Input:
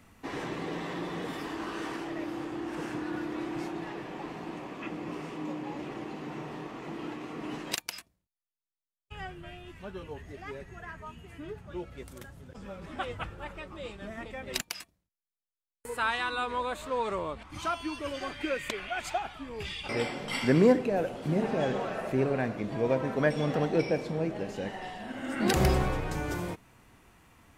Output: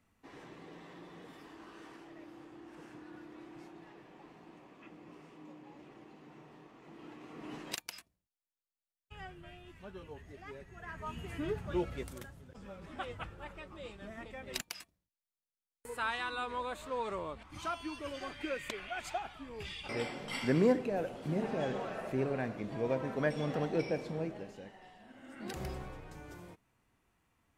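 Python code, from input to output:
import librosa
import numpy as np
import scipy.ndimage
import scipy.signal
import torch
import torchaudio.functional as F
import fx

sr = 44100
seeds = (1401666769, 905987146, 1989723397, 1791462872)

y = fx.gain(x, sr, db=fx.line((6.78, -16.0), (7.56, -7.0), (10.72, -7.0), (11.19, 5.0), (11.89, 5.0), (12.44, -6.0), (24.21, -6.0), (24.74, -16.5)))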